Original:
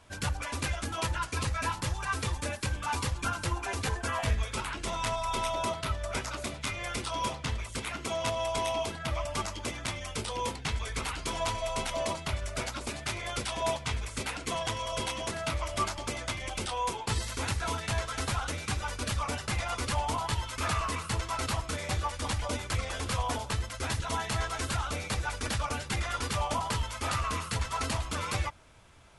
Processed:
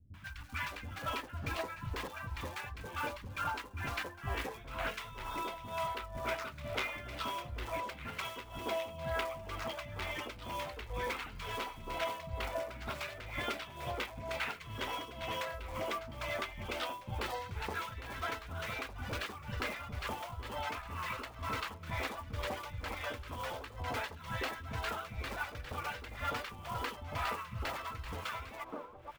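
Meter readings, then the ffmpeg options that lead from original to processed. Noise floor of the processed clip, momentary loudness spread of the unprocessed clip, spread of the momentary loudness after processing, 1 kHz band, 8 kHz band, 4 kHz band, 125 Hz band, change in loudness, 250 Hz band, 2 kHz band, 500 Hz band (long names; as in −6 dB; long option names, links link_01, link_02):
−50 dBFS, 4 LU, 4 LU, −6.0 dB, −16.0 dB, −8.0 dB, −10.0 dB, −7.0 dB, −8.0 dB, −4.0 dB, −5.5 dB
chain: -filter_complex "[0:a]lowpass=2700,acontrast=30,acrusher=bits=5:mode=log:mix=0:aa=0.000001,acompressor=threshold=-31dB:ratio=6,tremolo=f=2.1:d=0.82,lowshelf=frequency=270:gain=-7,acrossover=split=220|980[link_01][link_02][link_03];[link_03]adelay=140[link_04];[link_02]adelay=610[link_05];[link_01][link_05][link_04]amix=inputs=3:normalize=0,volume=2dB"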